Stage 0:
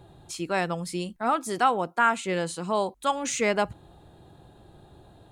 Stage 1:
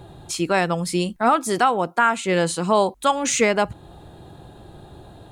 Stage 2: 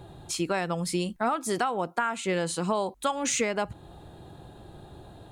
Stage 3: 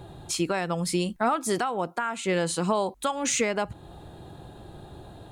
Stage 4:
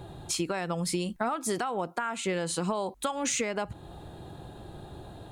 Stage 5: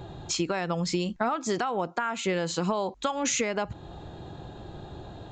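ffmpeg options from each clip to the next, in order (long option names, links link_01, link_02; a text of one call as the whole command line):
ffmpeg -i in.wav -af "alimiter=limit=-16dB:level=0:latency=1:release=374,volume=9dB" out.wav
ffmpeg -i in.wav -af "acompressor=threshold=-19dB:ratio=6,volume=-4dB" out.wav
ffmpeg -i in.wav -af "alimiter=limit=-16.5dB:level=0:latency=1:release=379,volume=2.5dB" out.wav
ffmpeg -i in.wav -af "acompressor=threshold=-26dB:ratio=6" out.wav
ffmpeg -i in.wav -af "aresample=16000,aresample=44100,volume=2.5dB" out.wav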